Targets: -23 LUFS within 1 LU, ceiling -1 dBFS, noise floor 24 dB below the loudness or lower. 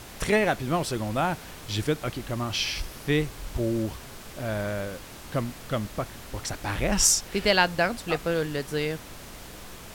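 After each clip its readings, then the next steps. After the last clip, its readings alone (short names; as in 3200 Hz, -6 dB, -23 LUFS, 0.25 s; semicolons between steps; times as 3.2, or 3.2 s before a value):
noise floor -43 dBFS; noise floor target -51 dBFS; loudness -27.0 LUFS; peak -6.5 dBFS; loudness target -23.0 LUFS
-> noise print and reduce 8 dB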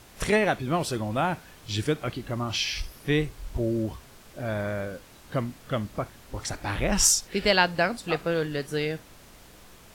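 noise floor -51 dBFS; loudness -27.0 LUFS; peak -6.5 dBFS; loudness target -23.0 LUFS
-> gain +4 dB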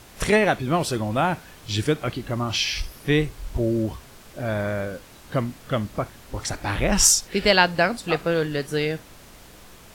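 loudness -23.0 LUFS; peak -2.5 dBFS; noise floor -47 dBFS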